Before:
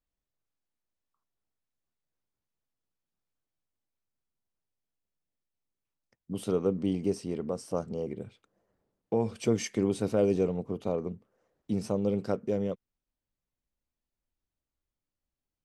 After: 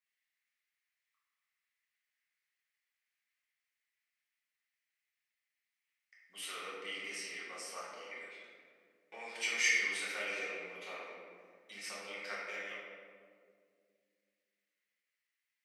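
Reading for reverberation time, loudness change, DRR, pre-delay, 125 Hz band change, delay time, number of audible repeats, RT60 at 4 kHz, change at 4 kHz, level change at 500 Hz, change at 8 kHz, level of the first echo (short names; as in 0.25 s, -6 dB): 2.1 s, -7.0 dB, -8.0 dB, 5 ms, under -35 dB, none, none, 1.0 s, +6.0 dB, -18.5 dB, +2.5 dB, none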